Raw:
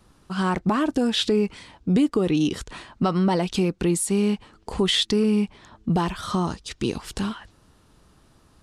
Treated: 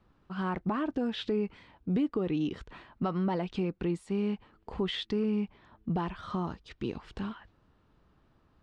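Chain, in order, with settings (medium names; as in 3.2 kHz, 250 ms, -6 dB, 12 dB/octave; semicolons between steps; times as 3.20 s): low-pass 2.7 kHz 12 dB/octave; trim -9 dB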